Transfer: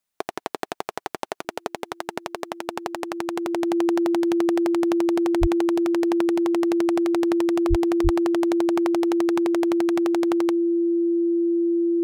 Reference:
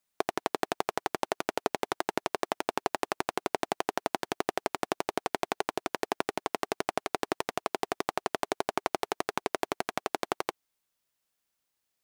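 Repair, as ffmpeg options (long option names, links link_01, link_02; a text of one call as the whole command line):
ffmpeg -i in.wav -filter_complex "[0:a]bandreject=frequency=340:width=30,asplit=3[link_01][link_02][link_03];[link_01]afade=type=out:start_time=5.4:duration=0.02[link_04];[link_02]highpass=frequency=140:width=0.5412,highpass=frequency=140:width=1.3066,afade=type=in:start_time=5.4:duration=0.02,afade=type=out:start_time=5.52:duration=0.02[link_05];[link_03]afade=type=in:start_time=5.52:duration=0.02[link_06];[link_04][link_05][link_06]amix=inputs=3:normalize=0,asplit=3[link_07][link_08][link_09];[link_07]afade=type=out:start_time=7.69:duration=0.02[link_10];[link_08]highpass=frequency=140:width=0.5412,highpass=frequency=140:width=1.3066,afade=type=in:start_time=7.69:duration=0.02,afade=type=out:start_time=7.81:duration=0.02[link_11];[link_09]afade=type=in:start_time=7.81:duration=0.02[link_12];[link_10][link_11][link_12]amix=inputs=3:normalize=0,asplit=3[link_13][link_14][link_15];[link_13]afade=type=out:start_time=8.03:duration=0.02[link_16];[link_14]highpass=frequency=140:width=0.5412,highpass=frequency=140:width=1.3066,afade=type=in:start_time=8.03:duration=0.02,afade=type=out:start_time=8.15:duration=0.02[link_17];[link_15]afade=type=in:start_time=8.15:duration=0.02[link_18];[link_16][link_17][link_18]amix=inputs=3:normalize=0" out.wav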